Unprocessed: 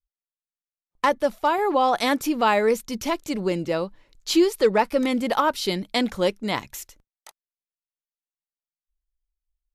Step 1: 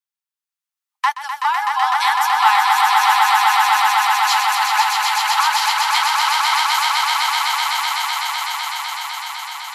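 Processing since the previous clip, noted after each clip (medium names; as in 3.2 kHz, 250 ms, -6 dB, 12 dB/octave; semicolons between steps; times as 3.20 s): steep high-pass 790 Hz 96 dB/octave; on a send: echo with a slow build-up 126 ms, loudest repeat 8, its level -3.5 dB; on the sum: trim +4 dB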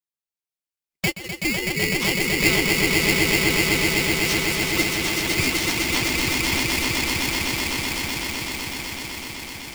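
polarity switched at an audio rate 1.2 kHz; trim -5.5 dB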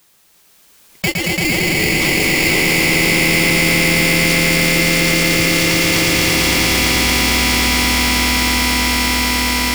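on a send: echo with a slow build-up 113 ms, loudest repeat 5, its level -4 dB; on the sum: level flattener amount 70%; trim -1 dB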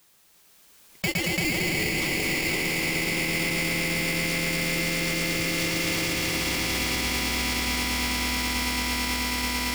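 peak limiter -11.5 dBFS, peak gain reduction 9 dB; trim -6 dB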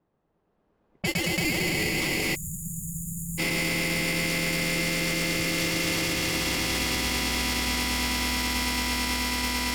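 level-controlled noise filter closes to 590 Hz, open at -23.5 dBFS; band-stop 2.3 kHz, Q 20; spectral selection erased 2.35–3.39 s, 210–6600 Hz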